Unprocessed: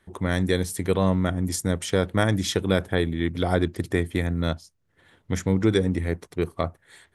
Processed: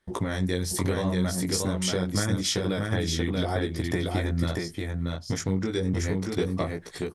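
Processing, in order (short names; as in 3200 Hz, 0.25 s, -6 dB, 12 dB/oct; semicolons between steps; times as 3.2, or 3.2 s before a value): gate -49 dBFS, range -16 dB; bell 5100 Hz +8 dB 0.59 oct; in parallel at -1 dB: limiter -16 dBFS, peak gain reduction 10.5 dB; on the sum: compressor 6:1, threshold -26 dBFS, peak gain reduction 13.5 dB; chorus 0.78 Hz, delay 16 ms, depth 6.8 ms; on a send: echo 0.634 s -3 dB; on the sum: gain +4.5 dB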